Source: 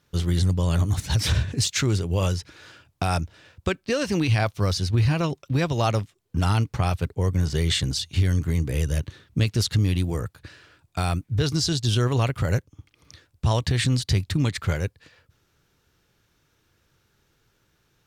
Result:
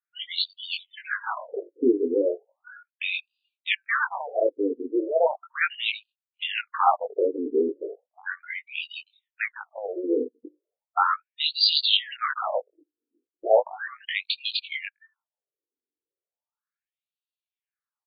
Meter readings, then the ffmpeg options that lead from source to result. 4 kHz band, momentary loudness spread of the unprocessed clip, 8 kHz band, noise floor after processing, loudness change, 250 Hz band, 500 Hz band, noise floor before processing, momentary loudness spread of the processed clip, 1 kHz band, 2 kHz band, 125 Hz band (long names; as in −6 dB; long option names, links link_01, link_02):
+3.0 dB, 7 LU, below −40 dB, below −85 dBFS, −2.0 dB, −4.5 dB, +4.0 dB, −68 dBFS, 13 LU, +4.0 dB, +4.0 dB, below −40 dB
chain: -filter_complex "[0:a]afftdn=noise_reduction=35:noise_floor=-40,asplit=2[link_01][link_02];[link_02]adelay=20,volume=-3.5dB[link_03];[link_01][link_03]amix=inputs=2:normalize=0,acrossover=split=780|920[link_04][link_05][link_06];[link_04]asoftclip=type=tanh:threshold=-18dB[link_07];[link_05]acontrast=81[link_08];[link_07][link_08][link_06]amix=inputs=3:normalize=0,afftfilt=real='re*between(b*sr/4096,190,6200)':imag='im*between(b*sr/4096,190,6200)':win_size=4096:overlap=0.75,asplit=2[link_09][link_10];[link_10]asoftclip=type=hard:threshold=-20dB,volume=-11dB[link_11];[link_09][link_11]amix=inputs=2:normalize=0,afftfilt=real='re*between(b*sr/1024,340*pow(3500/340,0.5+0.5*sin(2*PI*0.36*pts/sr))/1.41,340*pow(3500/340,0.5+0.5*sin(2*PI*0.36*pts/sr))*1.41)':imag='im*between(b*sr/1024,340*pow(3500/340,0.5+0.5*sin(2*PI*0.36*pts/sr))/1.41,340*pow(3500/340,0.5+0.5*sin(2*PI*0.36*pts/sr))*1.41)':win_size=1024:overlap=0.75,volume=7dB"